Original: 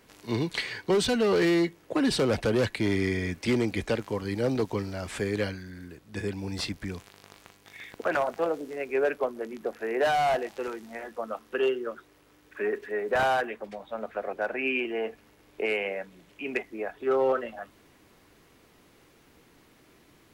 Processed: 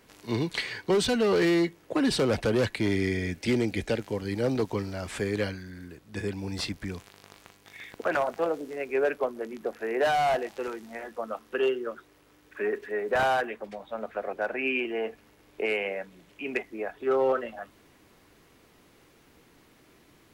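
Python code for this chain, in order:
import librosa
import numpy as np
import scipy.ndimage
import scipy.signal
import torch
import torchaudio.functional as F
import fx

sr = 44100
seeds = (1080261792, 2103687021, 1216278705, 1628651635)

y = fx.peak_eq(x, sr, hz=1100.0, db=-8.0, octaves=0.46, at=(2.89, 4.32))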